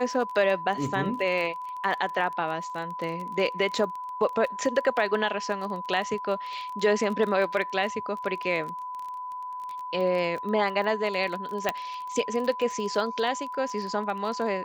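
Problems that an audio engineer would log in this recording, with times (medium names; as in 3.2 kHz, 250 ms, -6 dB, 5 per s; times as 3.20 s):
crackle 24 per s -32 dBFS
whine 1 kHz -33 dBFS
11.69 s: pop -10 dBFS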